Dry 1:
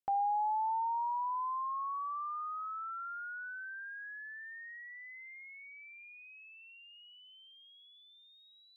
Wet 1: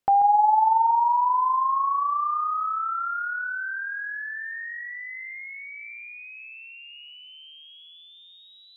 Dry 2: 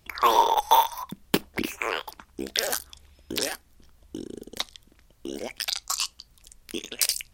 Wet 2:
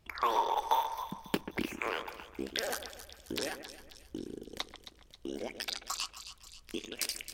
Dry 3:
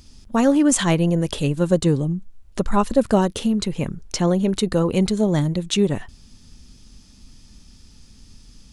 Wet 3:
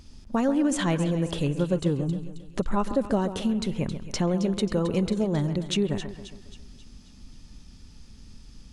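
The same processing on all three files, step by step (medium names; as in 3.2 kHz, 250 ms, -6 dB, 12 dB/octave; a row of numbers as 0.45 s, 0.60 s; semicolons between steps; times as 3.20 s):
treble shelf 4.4 kHz -8 dB; compression 2:1, threshold -25 dBFS; on a send: two-band feedback delay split 2.5 kHz, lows 136 ms, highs 268 ms, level -11 dB; on the sum: peak normalisation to -12 dBFS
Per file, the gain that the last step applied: +13.5 dB, -4.5 dB, -0.5 dB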